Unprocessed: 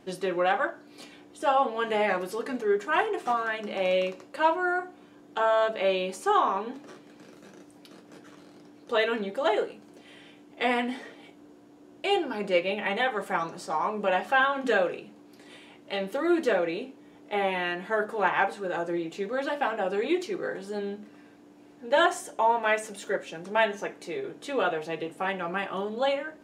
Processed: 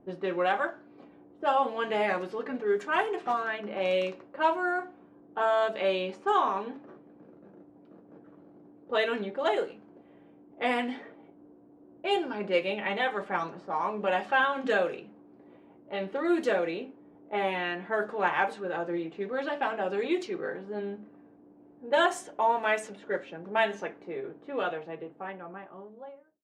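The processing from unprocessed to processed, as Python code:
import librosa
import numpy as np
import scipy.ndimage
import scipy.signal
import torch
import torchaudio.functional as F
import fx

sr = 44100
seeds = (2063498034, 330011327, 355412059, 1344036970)

y = fx.fade_out_tail(x, sr, length_s=2.36)
y = fx.env_lowpass(y, sr, base_hz=710.0, full_db=-21.0)
y = y * 10.0 ** (-2.0 / 20.0)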